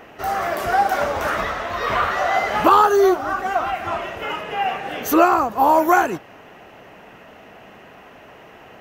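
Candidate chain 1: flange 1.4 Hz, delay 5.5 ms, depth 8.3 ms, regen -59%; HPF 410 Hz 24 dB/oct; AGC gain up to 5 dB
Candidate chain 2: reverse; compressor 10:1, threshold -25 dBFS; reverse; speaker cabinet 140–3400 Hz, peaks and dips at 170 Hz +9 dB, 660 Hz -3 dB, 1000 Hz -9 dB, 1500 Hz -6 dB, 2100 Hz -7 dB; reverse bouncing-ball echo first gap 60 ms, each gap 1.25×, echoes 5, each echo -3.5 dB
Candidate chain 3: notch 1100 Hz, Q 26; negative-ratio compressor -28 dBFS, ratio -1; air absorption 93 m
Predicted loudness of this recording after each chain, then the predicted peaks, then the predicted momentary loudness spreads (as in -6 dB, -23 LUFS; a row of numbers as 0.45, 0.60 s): -20.0, -30.0, -27.5 LUFS; -3.0, -15.0, -11.0 dBFS; 11, 15, 14 LU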